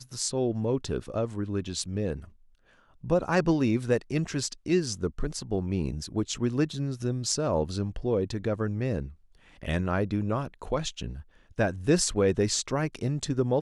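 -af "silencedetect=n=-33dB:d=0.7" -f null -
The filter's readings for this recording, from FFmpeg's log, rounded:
silence_start: 2.24
silence_end: 3.04 | silence_duration: 0.80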